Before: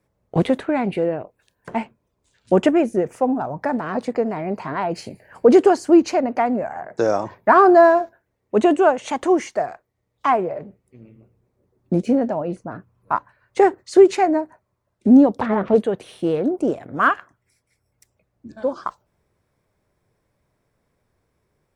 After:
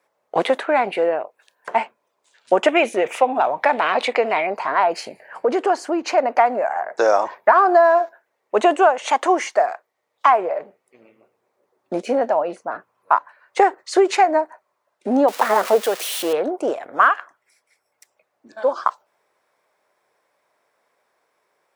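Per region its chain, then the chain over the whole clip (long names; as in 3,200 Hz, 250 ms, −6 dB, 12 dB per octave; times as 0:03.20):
0:02.68–0:04.47: flat-topped bell 2,900 Hz +11.5 dB 1.1 octaves + transient designer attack +1 dB, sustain +5 dB
0:05.05–0:06.18: bass and treble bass +7 dB, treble −5 dB + downward compressor 2 to 1, threshold −21 dBFS
0:15.28–0:16.33: spike at every zero crossing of −20 dBFS + high-pass filter 170 Hz + high-shelf EQ 6,000 Hz −5.5 dB
whole clip: Chebyshev high-pass filter 730 Hz, order 2; high-shelf EQ 5,100 Hz −5 dB; downward compressor 12 to 1, threshold −18 dBFS; level +8.5 dB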